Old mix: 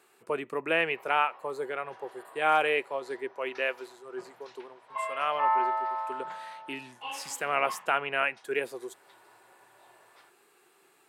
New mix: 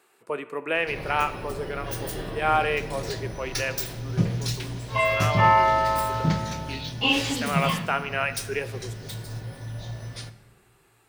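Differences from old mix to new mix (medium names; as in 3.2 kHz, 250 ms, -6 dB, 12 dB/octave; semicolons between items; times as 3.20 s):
speech: send on; background: remove ladder band-pass 1.1 kHz, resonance 45%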